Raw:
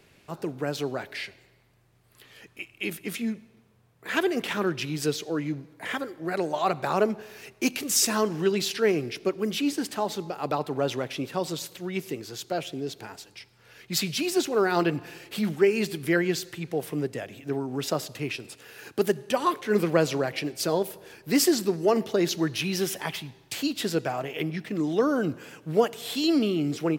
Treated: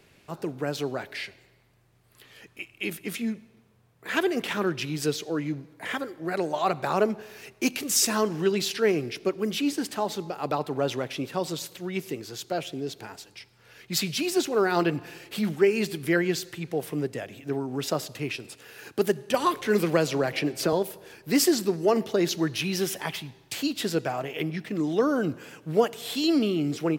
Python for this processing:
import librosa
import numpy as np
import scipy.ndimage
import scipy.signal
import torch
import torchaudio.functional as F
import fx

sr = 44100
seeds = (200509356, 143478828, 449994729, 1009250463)

y = fx.band_squash(x, sr, depth_pct=70, at=(19.34, 20.73))